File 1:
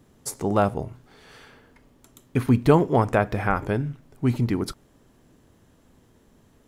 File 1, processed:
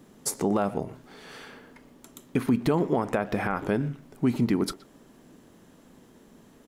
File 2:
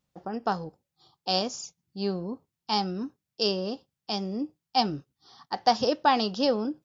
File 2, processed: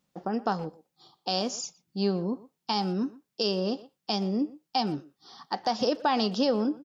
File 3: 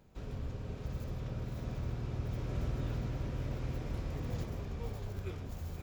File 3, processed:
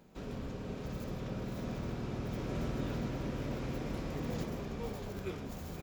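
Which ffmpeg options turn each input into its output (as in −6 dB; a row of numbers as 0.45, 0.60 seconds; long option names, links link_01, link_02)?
-filter_complex "[0:a]lowshelf=frequency=140:width_type=q:width=1.5:gain=-8,asplit=2[link_01][link_02];[link_02]acompressor=threshold=-31dB:ratio=6,volume=-1dB[link_03];[link_01][link_03]amix=inputs=2:normalize=0,alimiter=limit=-12.5dB:level=0:latency=1:release=135,asplit=2[link_04][link_05];[link_05]adelay=120,highpass=300,lowpass=3400,asoftclip=type=hard:threshold=-21dB,volume=-17dB[link_06];[link_04][link_06]amix=inputs=2:normalize=0,volume=-1.5dB"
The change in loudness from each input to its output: −4.0, −1.0, +0.5 LU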